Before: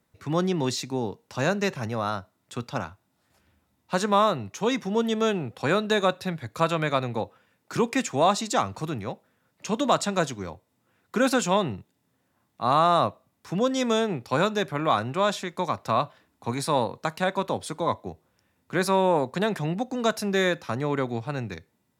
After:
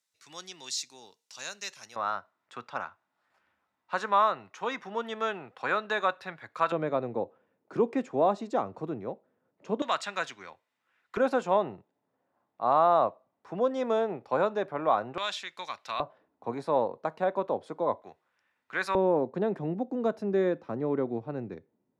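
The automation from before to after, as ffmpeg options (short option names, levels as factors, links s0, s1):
-af "asetnsamples=n=441:p=0,asendcmd='1.96 bandpass f 1300;6.72 bandpass f 430;9.82 bandpass f 2000;11.17 bandpass f 660;15.18 bandpass f 3000;16 bandpass f 540;18.02 bandpass f 1700;18.95 bandpass f 360',bandpass=f=6100:t=q:w=1.1:csg=0"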